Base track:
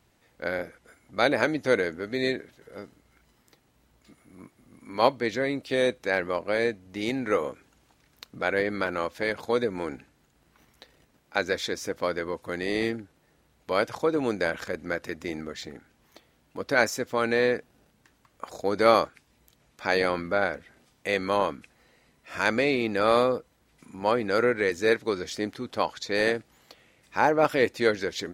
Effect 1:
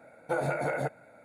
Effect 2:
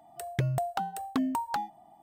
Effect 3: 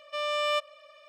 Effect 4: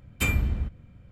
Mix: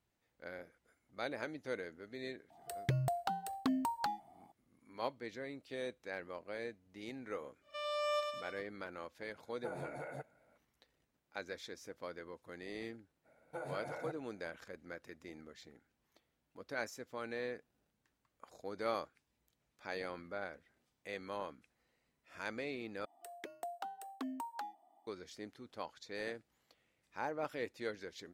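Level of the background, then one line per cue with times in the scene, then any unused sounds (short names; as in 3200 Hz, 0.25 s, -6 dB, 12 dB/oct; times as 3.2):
base track -18 dB
2.5 add 2 -5.5 dB + bell 4400 Hz +6 dB 0.33 oct
7.61 add 3 -10.5 dB, fades 0.10 s + thinning echo 0.103 s, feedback 59%, level -4 dB
9.34 add 1 -15 dB
13.24 add 1 -14.5 dB, fades 0.02 s
23.05 replace with 2 -12 dB + steep high-pass 250 Hz 48 dB/oct
not used: 4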